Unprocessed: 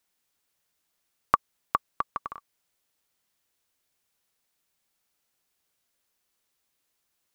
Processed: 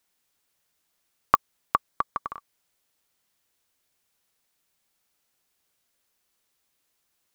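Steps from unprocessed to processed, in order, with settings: 1.88–2.31 notch 2700 Hz, Q 6.9; pops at 1.35, -12 dBFS; gain +2.5 dB

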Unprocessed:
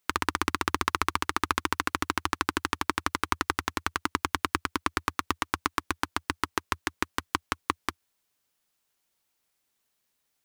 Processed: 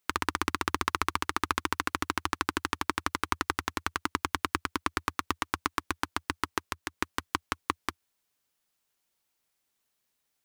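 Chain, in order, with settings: 6.59–6.99 compressor, threshold -28 dBFS, peak gain reduction 6.5 dB; gain -2 dB

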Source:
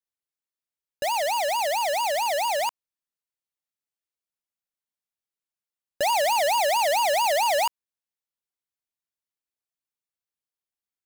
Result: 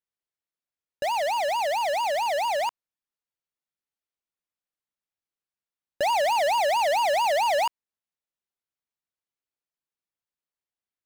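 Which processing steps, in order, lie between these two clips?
high shelf 5800 Hz -11 dB

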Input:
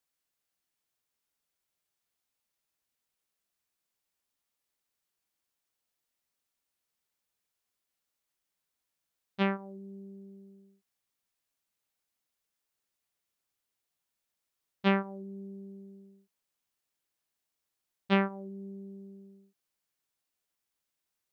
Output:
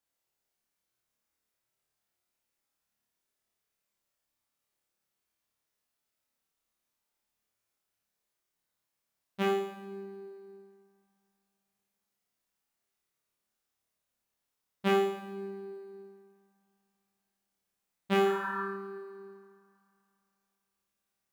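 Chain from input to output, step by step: in parallel at -11.5 dB: sample-and-hold 10×; on the sum: spectral repair 18.27–18.6, 840–1800 Hz before; flutter echo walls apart 4.8 m, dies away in 0.79 s; reverb RT60 2.8 s, pre-delay 5 ms, DRR 13 dB; gain -4.5 dB

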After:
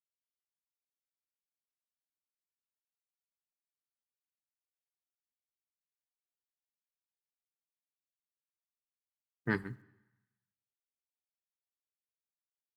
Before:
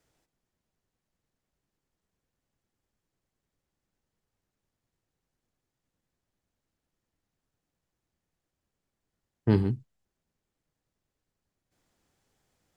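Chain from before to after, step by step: per-bin expansion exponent 1.5; tilt +3.5 dB/oct; harmonic-percussive split harmonic -7 dB; EQ curve 140 Hz 0 dB, 730 Hz -9 dB, 1800 Hz +8 dB, 2700 Hz -15 dB; in parallel at +3 dB: limiter -30.5 dBFS, peak gain reduction 10 dB; on the sum: requantised 12-bit, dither none; on a send at -16 dB: reverb RT60 1.1 s, pre-delay 3 ms; on the sum: upward expander 1.5:1, over -41 dBFS

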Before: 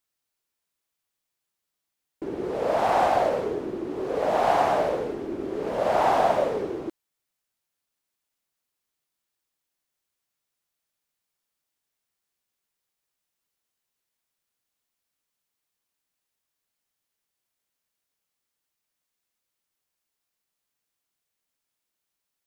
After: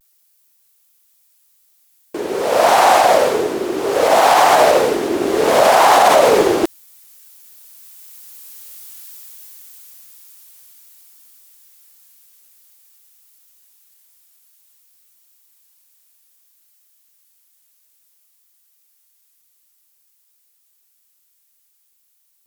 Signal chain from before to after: Doppler pass-by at 8.87, 12 m/s, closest 9 m; RIAA curve recording; vibrato 0.55 Hz 46 cents; maximiser +32.5 dB; Doppler distortion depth 0.26 ms; gain -1 dB

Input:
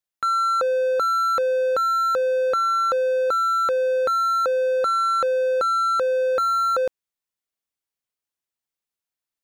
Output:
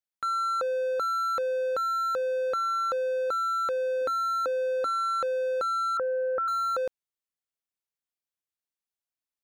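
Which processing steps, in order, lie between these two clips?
4.01–5.01 bell 280 Hz +11 dB 0.26 oct; 5.97–6.48 steep low-pass 1900 Hz 48 dB/oct; gain -7 dB

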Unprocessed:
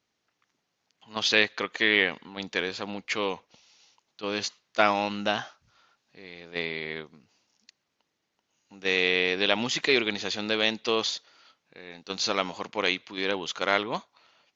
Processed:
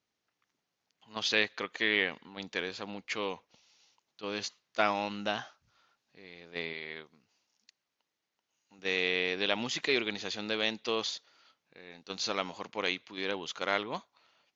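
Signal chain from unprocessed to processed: 6.73–8.79 low shelf 440 Hz -6.5 dB; gain -6 dB

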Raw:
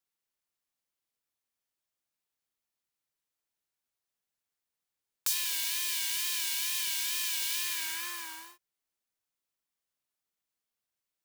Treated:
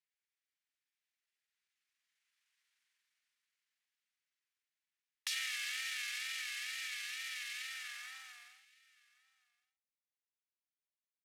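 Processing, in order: Doppler pass-by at 2.66, 9 m/s, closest 4.4 m; pitch shift -4.5 st; resonant high-pass 1900 Hz, resonance Q 2; air absorption 54 m; echo 1.12 s -24 dB; gain +9 dB

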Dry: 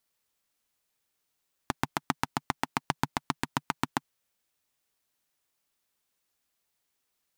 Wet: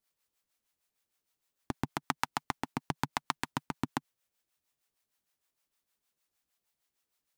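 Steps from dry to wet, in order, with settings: harmonic tremolo 6.5 Hz, depth 70%, crossover 550 Hz

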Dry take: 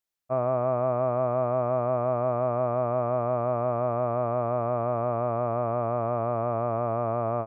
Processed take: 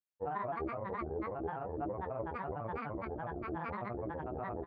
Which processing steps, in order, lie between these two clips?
grains, grains 15/s, pitch spread up and down by 12 st; chorus voices 2, 0.34 Hz, delay 26 ms, depth 1.5 ms; tempo 1.6×; gain -7.5 dB

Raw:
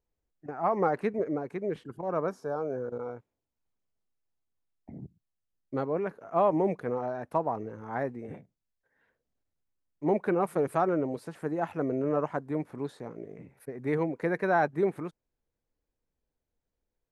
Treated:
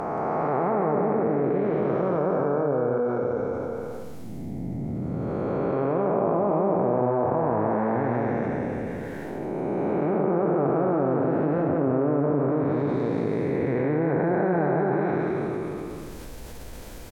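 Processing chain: time blur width 0.743 s; treble ducked by the level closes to 1400 Hz, closed at -31.5 dBFS; echo 0.178 s -4 dB; fast leveller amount 70%; gain +8 dB

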